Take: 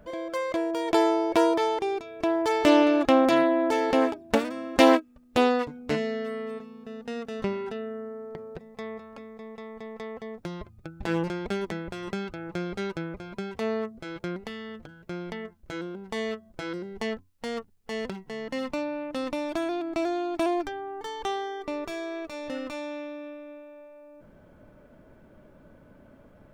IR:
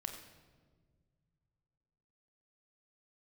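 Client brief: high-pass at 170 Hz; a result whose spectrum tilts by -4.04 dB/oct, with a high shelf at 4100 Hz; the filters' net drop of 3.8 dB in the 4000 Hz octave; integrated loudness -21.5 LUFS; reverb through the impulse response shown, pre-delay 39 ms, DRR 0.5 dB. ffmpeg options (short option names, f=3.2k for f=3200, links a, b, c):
-filter_complex "[0:a]highpass=170,equalizer=f=4k:t=o:g=-3,highshelf=f=4.1k:g=-4,asplit=2[a][b];[1:a]atrim=start_sample=2205,adelay=39[c];[b][c]afir=irnorm=-1:irlink=0,volume=1.5dB[d];[a][d]amix=inputs=2:normalize=0,volume=4.5dB"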